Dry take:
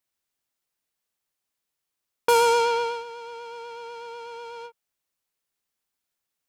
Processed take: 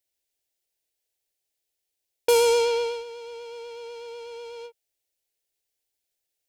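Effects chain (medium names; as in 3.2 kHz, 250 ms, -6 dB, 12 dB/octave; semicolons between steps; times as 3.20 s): static phaser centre 480 Hz, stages 4; trim +2 dB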